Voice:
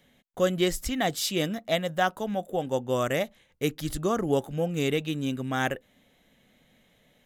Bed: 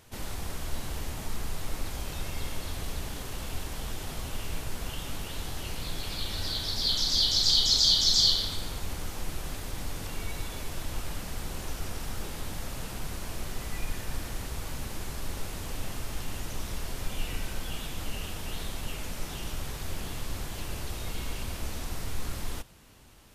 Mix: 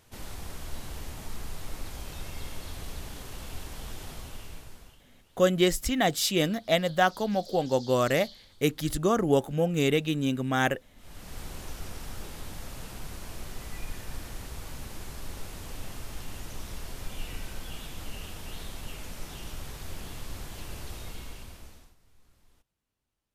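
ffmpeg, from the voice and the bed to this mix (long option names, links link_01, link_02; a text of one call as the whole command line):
ffmpeg -i stem1.wav -i stem2.wav -filter_complex "[0:a]adelay=5000,volume=2dB[link_01];[1:a]volume=17.5dB,afade=type=out:start_time=4.05:duration=0.97:silence=0.0841395,afade=type=in:start_time=10.96:duration=0.44:silence=0.0841395,afade=type=out:start_time=20.95:duration=1:silence=0.0530884[link_02];[link_01][link_02]amix=inputs=2:normalize=0" out.wav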